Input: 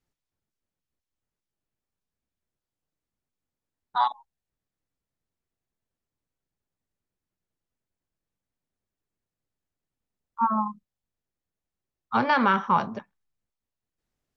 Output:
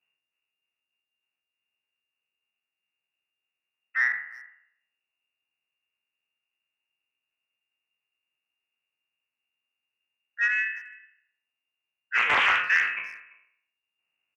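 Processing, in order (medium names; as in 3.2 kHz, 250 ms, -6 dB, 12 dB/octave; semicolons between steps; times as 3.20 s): spectral sustain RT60 0.64 s; frequency inversion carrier 2.8 kHz; high-pass 110 Hz; speakerphone echo 340 ms, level -22 dB; saturation -10 dBFS, distortion -22 dB; loudspeaker Doppler distortion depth 0.38 ms; trim -1.5 dB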